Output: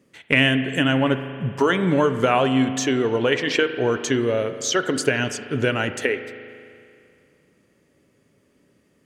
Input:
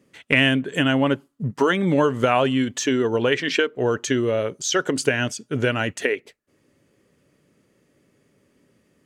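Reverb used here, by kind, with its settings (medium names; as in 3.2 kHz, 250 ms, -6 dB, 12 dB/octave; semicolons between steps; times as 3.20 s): spring tank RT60 2.4 s, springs 38 ms, chirp 50 ms, DRR 9.5 dB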